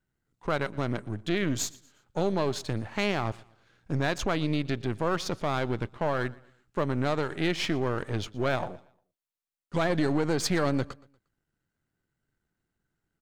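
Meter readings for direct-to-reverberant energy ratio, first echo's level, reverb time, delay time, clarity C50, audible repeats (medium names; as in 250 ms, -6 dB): no reverb, -22.5 dB, no reverb, 118 ms, no reverb, 2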